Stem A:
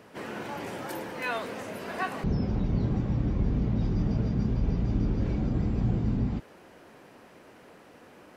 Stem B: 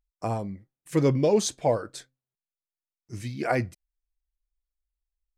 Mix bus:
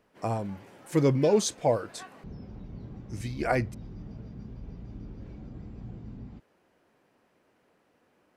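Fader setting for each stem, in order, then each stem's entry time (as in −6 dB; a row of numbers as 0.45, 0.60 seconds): −15.5, −1.0 decibels; 0.00, 0.00 seconds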